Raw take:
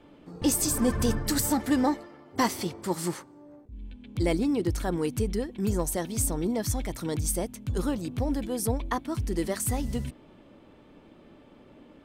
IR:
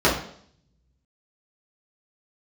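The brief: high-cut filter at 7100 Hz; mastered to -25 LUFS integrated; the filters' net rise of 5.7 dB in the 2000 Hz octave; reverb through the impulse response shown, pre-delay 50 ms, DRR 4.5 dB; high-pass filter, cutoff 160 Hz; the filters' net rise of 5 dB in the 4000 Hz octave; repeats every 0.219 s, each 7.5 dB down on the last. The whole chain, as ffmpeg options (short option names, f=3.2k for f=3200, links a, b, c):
-filter_complex "[0:a]highpass=160,lowpass=7.1k,equalizer=f=2k:t=o:g=5.5,equalizer=f=4k:t=o:g=5.5,aecho=1:1:219|438|657|876|1095:0.422|0.177|0.0744|0.0312|0.0131,asplit=2[a][b];[1:a]atrim=start_sample=2205,adelay=50[c];[b][c]afir=irnorm=-1:irlink=0,volume=-25dB[d];[a][d]amix=inputs=2:normalize=0,volume=1.5dB"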